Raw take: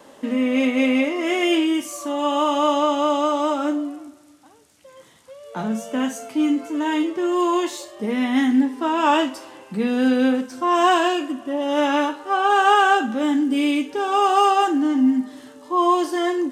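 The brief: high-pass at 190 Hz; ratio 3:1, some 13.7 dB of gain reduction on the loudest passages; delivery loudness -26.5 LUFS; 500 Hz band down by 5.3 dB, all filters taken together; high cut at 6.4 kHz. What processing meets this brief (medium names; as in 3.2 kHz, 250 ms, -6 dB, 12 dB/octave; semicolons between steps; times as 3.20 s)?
high-pass 190 Hz; low-pass 6.4 kHz; peaking EQ 500 Hz -7.5 dB; compression 3:1, threshold -34 dBFS; trim +7 dB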